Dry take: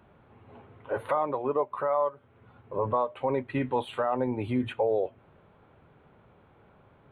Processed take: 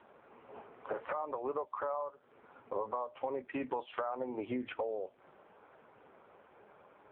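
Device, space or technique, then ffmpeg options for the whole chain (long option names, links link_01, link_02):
voicemail: -af "highpass=350,lowpass=3100,acompressor=threshold=-37dB:ratio=10,volume=5dB" -ar 8000 -c:a libopencore_amrnb -b:a 5150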